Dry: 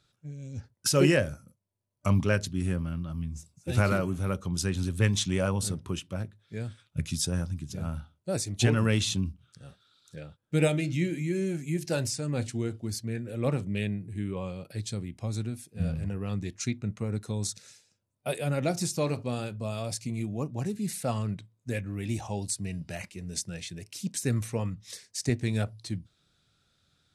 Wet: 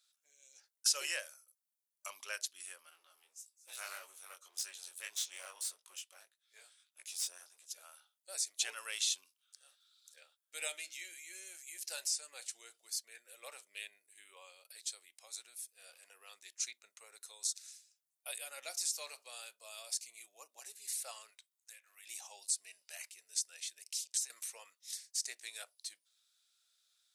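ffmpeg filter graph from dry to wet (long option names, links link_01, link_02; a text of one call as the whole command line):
ffmpeg -i in.wav -filter_complex "[0:a]asettb=1/sr,asplit=3[link_01][link_02][link_03];[link_01]atrim=end=2.904[link_04];[link_02]atrim=start=2.9:end=7.66,asetpts=PTS-STARTPTS,afade=type=in:duration=0.004:curve=qsin,afade=type=out:start_time=4.756:duration=0.004:curve=qsin,aeval=exprs='clip(val(0),-1,0.0251)':channel_layout=same,flanger=delay=17.5:depth=5.2:speed=1.7[link_05];[link_03]atrim=start=7.656[link_06];[link_04][link_05]acrossfade=duration=0.004:curve1=hsin:curve2=qsin[link_07];[link_07][link_06]acrossfade=duration=0.004:curve1=qsin:curve2=hsin,asettb=1/sr,asplit=3[link_08][link_09][link_10];[link_08]atrim=end=21.304[link_11];[link_09]atrim=start=21.3:end=22.07,asetpts=PTS-STARTPTS,afade=type=in:duration=0.004:curve=qsin,afade=type=out:start_time=0.766:duration=0.004:curve=qsin,highpass=740,acompressor=threshold=-45dB:ratio=8:attack=3.2:release=140:knee=1:detection=peak[link_12];[link_10]atrim=start=22.066[link_13];[link_11][link_12]acrossfade=duration=0.004:curve1=hsin:curve2=qsin[link_14];[link_14][link_13]acrossfade=duration=0.004:curve1=qsin:curve2=hsin,asettb=1/sr,asplit=3[link_15][link_16][link_17];[link_15]atrim=end=23.864[link_18];[link_16]atrim=start=23.86:end=24.3,asetpts=PTS-STARTPTS,afade=type=in:duration=0.004:curve=qsin,afade=type=out:start_time=0.436:duration=0.004:curve=qsin,lowpass=6300,acompressor=threshold=-34dB:ratio=10:attack=3.2:release=140:knee=1:detection=peak,aemphasis=mode=production:type=bsi[link_19];[link_17]atrim=start=24.296[link_20];[link_18][link_19]acrossfade=duration=0.004:curve1=hsin:curve2=qsin[link_21];[link_21][link_20]acrossfade=duration=0.004:curve1=qsin:curve2=hsin,highpass=frequency=530:width=0.5412,highpass=frequency=530:width=1.3066,acrossover=split=8100[link_22][link_23];[link_23]acompressor=threshold=-45dB:ratio=4:attack=1:release=60[link_24];[link_22][link_24]amix=inputs=2:normalize=0,aderivative,volume=1.5dB" out.wav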